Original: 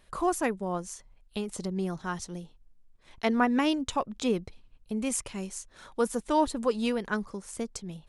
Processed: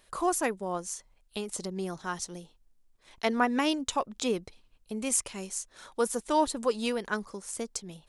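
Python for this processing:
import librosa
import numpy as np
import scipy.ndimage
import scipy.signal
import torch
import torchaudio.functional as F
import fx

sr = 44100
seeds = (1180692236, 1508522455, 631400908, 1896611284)

y = fx.bass_treble(x, sr, bass_db=-7, treble_db=5)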